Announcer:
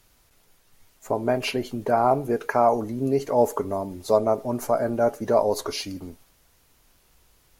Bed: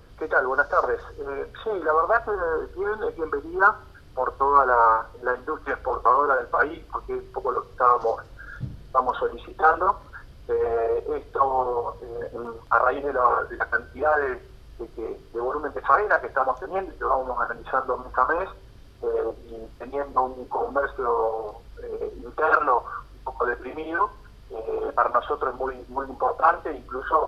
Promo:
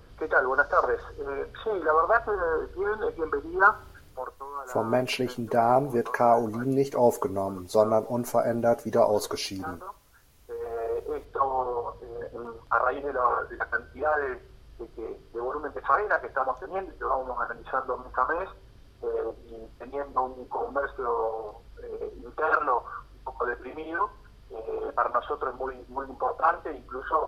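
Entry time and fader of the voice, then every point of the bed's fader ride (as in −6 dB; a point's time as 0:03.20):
3.65 s, −1.5 dB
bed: 0:03.99 −1.5 dB
0:04.47 −19.5 dB
0:10.18 −19.5 dB
0:11.00 −4.5 dB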